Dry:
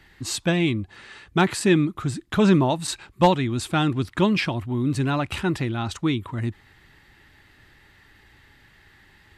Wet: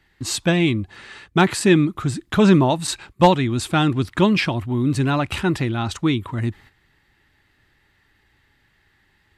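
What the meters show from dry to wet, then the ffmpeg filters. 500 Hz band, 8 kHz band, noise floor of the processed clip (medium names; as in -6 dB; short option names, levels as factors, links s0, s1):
+3.5 dB, +3.5 dB, -63 dBFS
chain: -af "agate=range=0.282:threshold=0.00447:ratio=16:detection=peak,volume=1.5"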